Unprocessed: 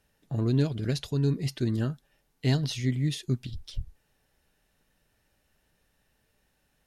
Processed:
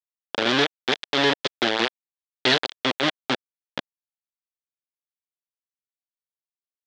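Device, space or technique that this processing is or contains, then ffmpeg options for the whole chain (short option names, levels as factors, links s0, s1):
hand-held game console: -af "acrusher=bits=3:mix=0:aa=0.000001,highpass=430,equalizer=f=680:t=q:w=4:g=-4,equalizer=f=1100:t=q:w=4:g=-5,equalizer=f=1700:t=q:w=4:g=3,equalizer=f=3400:t=q:w=4:g=9,lowpass=f=4900:w=0.5412,lowpass=f=4900:w=1.3066,volume=2.51"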